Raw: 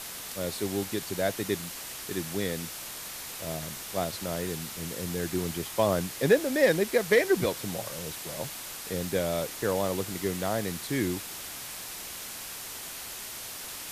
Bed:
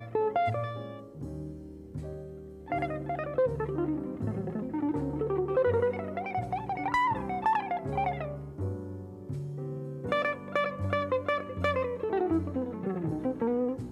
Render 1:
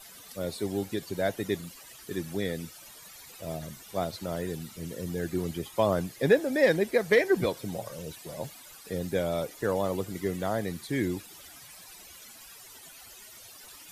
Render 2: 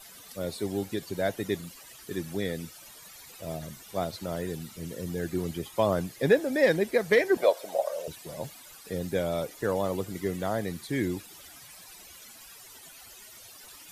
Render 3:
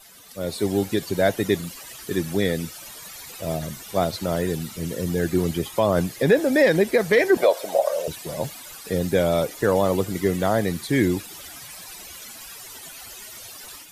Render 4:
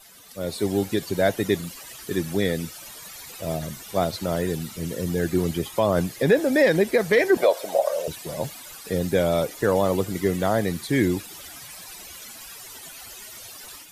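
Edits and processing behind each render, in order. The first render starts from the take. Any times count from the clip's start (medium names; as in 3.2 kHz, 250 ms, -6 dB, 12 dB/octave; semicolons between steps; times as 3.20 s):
noise reduction 15 dB, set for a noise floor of -40 dBFS
7.37–8.08 s: resonant high-pass 610 Hz
peak limiter -17 dBFS, peak gain reduction 5.5 dB; level rider gain up to 9 dB
trim -1 dB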